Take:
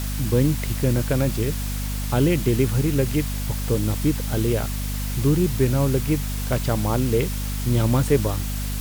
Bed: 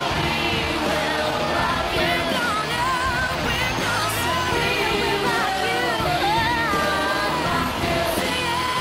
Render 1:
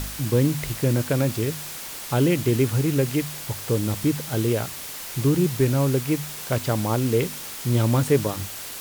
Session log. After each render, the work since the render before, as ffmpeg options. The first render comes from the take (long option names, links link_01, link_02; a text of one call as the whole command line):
ffmpeg -i in.wav -af "bandreject=frequency=50:width_type=h:width=4,bandreject=frequency=100:width_type=h:width=4,bandreject=frequency=150:width_type=h:width=4,bandreject=frequency=200:width_type=h:width=4,bandreject=frequency=250:width_type=h:width=4" out.wav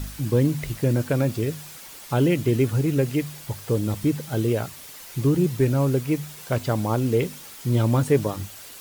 ffmpeg -i in.wav -af "afftdn=noise_reduction=8:noise_floor=-36" out.wav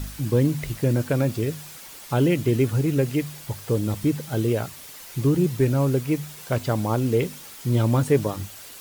ffmpeg -i in.wav -af anull out.wav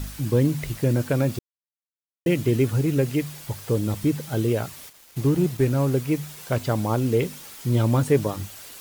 ffmpeg -i in.wav -filter_complex "[0:a]asplit=3[link_01][link_02][link_03];[link_01]afade=type=out:start_time=4.88:duration=0.02[link_04];[link_02]aeval=exprs='sgn(val(0))*max(abs(val(0))-0.00944,0)':channel_layout=same,afade=type=in:start_time=4.88:duration=0.02,afade=type=out:start_time=5.93:duration=0.02[link_05];[link_03]afade=type=in:start_time=5.93:duration=0.02[link_06];[link_04][link_05][link_06]amix=inputs=3:normalize=0,asplit=3[link_07][link_08][link_09];[link_07]atrim=end=1.39,asetpts=PTS-STARTPTS,afade=type=out:start_time=1.386:duration=0.004:curve=hsin[link_10];[link_08]atrim=start=1.39:end=2.26,asetpts=PTS-STARTPTS,volume=0[link_11];[link_09]atrim=start=2.26,asetpts=PTS-STARTPTS,afade=type=in:duration=0.004:curve=hsin[link_12];[link_10][link_11][link_12]concat=n=3:v=0:a=1" out.wav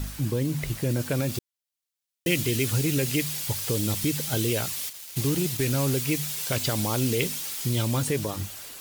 ffmpeg -i in.wav -filter_complex "[0:a]acrossover=split=2400[link_01][link_02];[link_01]alimiter=limit=-19dB:level=0:latency=1:release=99[link_03];[link_02]dynaudnorm=framelen=590:gausssize=5:maxgain=10.5dB[link_04];[link_03][link_04]amix=inputs=2:normalize=0" out.wav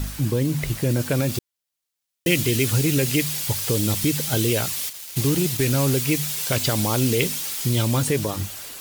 ffmpeg -i in.wav -af "volume=4.5dB" out.wav